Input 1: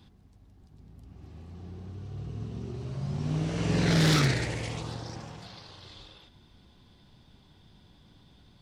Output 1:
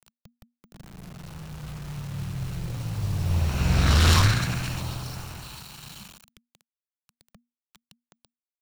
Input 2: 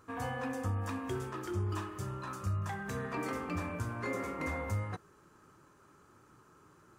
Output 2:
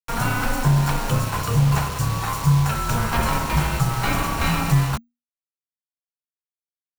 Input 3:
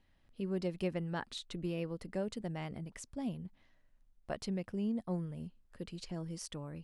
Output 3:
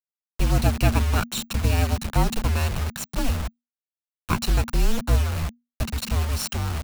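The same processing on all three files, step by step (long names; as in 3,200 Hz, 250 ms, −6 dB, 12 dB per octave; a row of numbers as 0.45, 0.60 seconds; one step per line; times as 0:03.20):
lower of the sound and its delayed copy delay 0.68 ms
bit-depth reduction 8 bits, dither none
frequency shifter −240 Hz
normalise the peak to −6 dBFS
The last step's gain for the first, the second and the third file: +6.0, +17.0, +17.5 decibels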